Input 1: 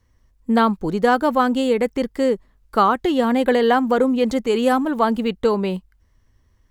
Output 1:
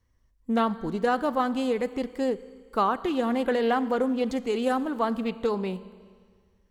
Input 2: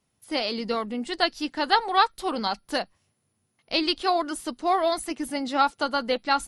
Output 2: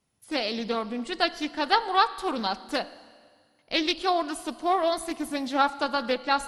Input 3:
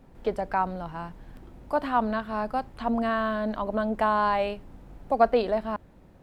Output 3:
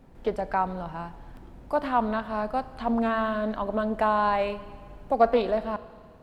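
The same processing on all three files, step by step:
Schroeder reverb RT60 1.8 s, combs from 27 ms, DRR 15 dB; loudspeaker Doppler distortion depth 0.16 ms; normalise loudness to -27 LUFS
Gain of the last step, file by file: -8.0 dB, -1.5 dB, 0.0 dB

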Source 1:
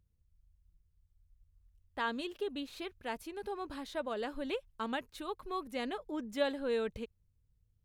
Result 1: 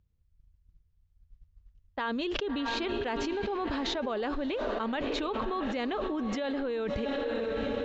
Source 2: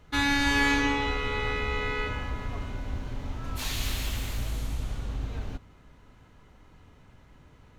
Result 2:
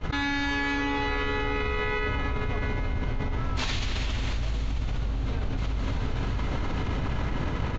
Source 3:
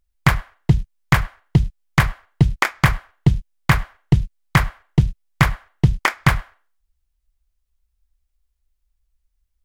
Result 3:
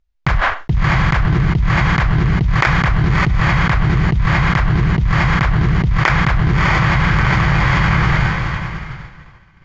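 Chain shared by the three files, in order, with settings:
resampled via 16 kHz; distance through air 110 m; echo that smears into a reverb 653 ms, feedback 41%, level -13.5 dB; expander -46 dBFS; level flattener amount 100%; trim -4.5 dB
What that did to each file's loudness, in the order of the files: +6.5 LU, 0.0 LU, +5.0 LU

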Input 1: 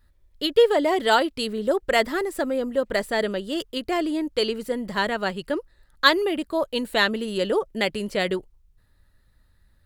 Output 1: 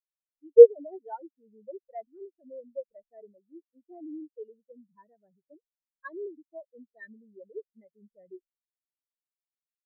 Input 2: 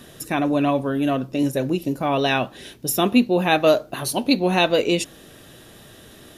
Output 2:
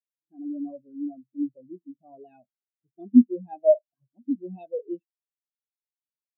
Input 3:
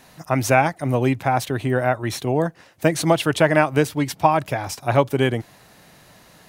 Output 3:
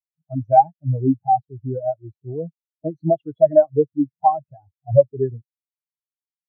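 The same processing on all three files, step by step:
level-controlled noise filter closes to 800 Hz, open at -14 dBFS; power-law waveshaper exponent 0.7; spectral contrast expander 4:1; trim -1 dB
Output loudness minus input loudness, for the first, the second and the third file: +7.5 LU, -5.0 LU, +1.0 LU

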